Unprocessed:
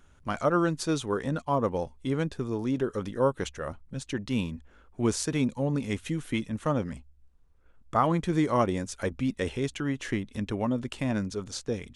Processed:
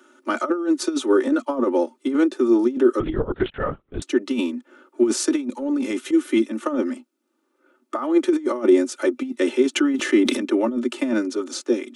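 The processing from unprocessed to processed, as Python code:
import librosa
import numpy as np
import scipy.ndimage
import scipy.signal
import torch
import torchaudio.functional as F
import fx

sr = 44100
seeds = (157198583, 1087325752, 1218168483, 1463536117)

y = scipy.signal.sosfilt(scipy.signal.butter(16, 230.0, 'highpass', fs=sr, output='sos'), x)
y = fx.hpss(y, sr, part='harmonic', gain_db=4)
y = y + 0.9 * np.pad(y, (int(3.4 * sr / 1000.0), 0))[:len(y)]
y = fx.over_compress(y, sr, threshold_db=-23.0, ratio=-0.5)
y = fx.transient(y, sr, attack_db=-11, sustain_db=2, at=(5.55, 6.12), fade=0.02)
y = fx.small_body(y, sr, hz=(370.0, 1300.0), ring_ms=45, db=13)
y = fx.lpc_vocoder(y, sr, seeds[0], excitation='whisper', order=10, at=(3.0, 4.02))
y = fx.sustainer(y, sr, db_per_s=50.0, at=(9.75, 10.41), fade=0.02)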